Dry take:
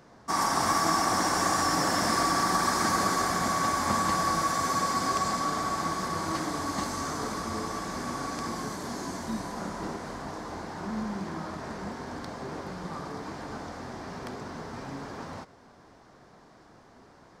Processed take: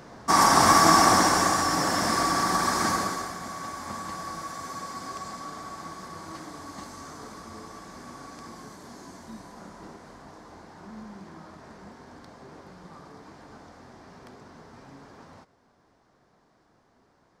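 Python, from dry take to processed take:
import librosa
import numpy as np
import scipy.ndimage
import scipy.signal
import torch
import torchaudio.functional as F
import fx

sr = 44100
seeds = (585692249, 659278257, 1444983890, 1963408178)

y = fx.gain(x, sr, db=fx.line((1.07, 8.0), (1.64, 1.0), (2.9, 1.0), (3.37, -9.5)))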